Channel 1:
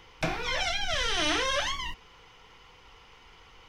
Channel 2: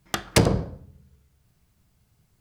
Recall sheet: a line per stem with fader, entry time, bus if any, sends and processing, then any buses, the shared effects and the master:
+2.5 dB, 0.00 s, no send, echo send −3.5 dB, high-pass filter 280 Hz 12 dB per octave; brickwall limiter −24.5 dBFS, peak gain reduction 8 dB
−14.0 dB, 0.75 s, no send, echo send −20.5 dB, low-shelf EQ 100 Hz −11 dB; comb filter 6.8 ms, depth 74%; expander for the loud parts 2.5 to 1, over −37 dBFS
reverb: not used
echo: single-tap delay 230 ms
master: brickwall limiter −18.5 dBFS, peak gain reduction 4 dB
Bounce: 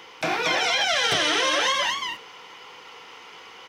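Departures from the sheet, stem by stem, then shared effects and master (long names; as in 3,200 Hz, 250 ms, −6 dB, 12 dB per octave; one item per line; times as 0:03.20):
stem 1 +2.5 dB → +9.5 dB
master: missing brickwall limiter −18.5 dBFS, peak gain reduction 4 dB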